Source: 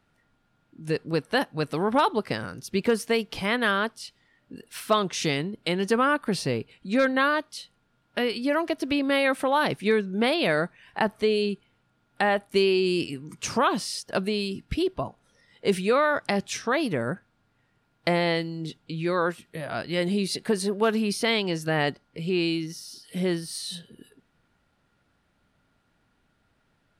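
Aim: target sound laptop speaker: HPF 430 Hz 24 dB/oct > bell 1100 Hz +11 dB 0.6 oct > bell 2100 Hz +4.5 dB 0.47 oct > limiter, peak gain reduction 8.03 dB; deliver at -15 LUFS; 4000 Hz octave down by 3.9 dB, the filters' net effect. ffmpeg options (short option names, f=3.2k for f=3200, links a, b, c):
-af "highpass=f=430:w=0.5412,highpass=f=430:w=1.3066,equalizer=f=1.1k:t=o:w=0.6:g=11,equalizer=f=2.1k:t=o:w=0.47:g=4.5,equalizer=f=4k:t=o:g=-6.5,volume=12dB,alimiter=limit=-0.5dB:level=0:latency=1"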